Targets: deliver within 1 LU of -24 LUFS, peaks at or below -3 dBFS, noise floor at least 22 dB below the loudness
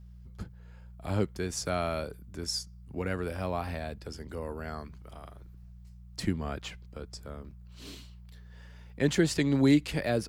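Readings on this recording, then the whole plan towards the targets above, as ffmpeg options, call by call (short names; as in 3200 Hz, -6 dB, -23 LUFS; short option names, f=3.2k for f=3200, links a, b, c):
hum 60 Hz; harmonics up to 180 Hz; hum level -46 dBFS; loudness -31.5 LUFS; peak -12.5 dBFS; loudness target -24.0 LUFS
-> -af "bandreject=f=60:t=h:w=4,bandreject=f=120:t=h:w=4,bandreject=f=180:t=h:w=4"
-af "volume=7.5dB"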